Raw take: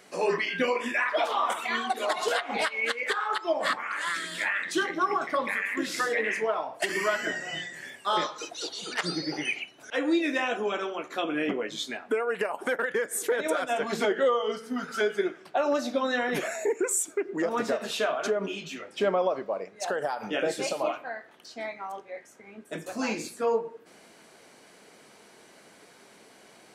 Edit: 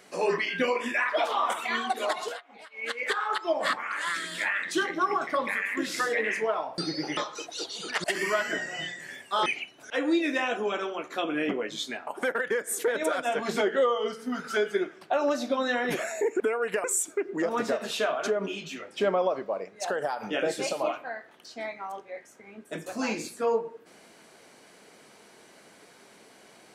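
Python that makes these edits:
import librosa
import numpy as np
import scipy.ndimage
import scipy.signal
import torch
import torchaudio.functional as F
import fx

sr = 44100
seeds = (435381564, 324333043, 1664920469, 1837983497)

y = fx.edit(x, sr, fx.fade_down_up(start_s=2.07, length_s=0.97, db=-21.0, fade_s=0.35),
    fx.swap(start_s=6.78, length_s=1.42, other_s=9.07, other_length_s=0.39),
    fx.move(start_s=12.07, length_s=0.44, to_s=16.84), tone=tone)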